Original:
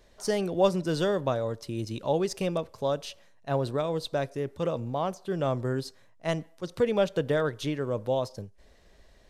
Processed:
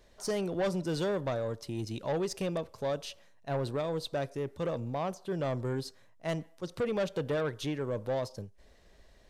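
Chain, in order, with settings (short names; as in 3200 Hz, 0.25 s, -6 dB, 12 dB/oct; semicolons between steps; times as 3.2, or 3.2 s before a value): soft clip -23.5 dBFS, distortion -12 dB; gain -2 dB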